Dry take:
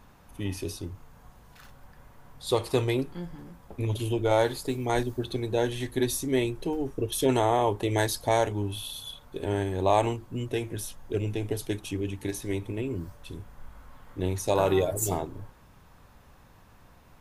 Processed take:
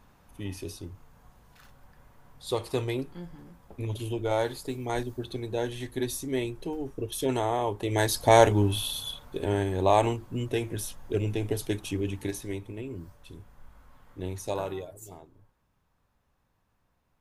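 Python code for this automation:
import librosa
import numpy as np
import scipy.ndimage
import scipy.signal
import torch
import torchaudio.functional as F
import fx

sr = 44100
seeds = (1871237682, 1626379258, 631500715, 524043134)

y = fx.gain(x, sr, db=fx.line((7.77, -4.0), (8.44, 8.0), (9.57, 1.0), (12.19, 1.0), (12.65, -6.0), (14.52, -6.0), (14.97, -18.0)))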